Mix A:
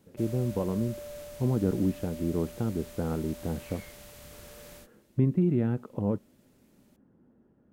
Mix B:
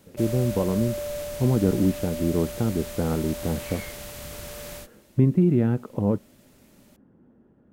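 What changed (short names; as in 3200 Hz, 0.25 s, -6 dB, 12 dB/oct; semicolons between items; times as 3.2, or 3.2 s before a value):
speech +5.5 dB; background +10.5 dB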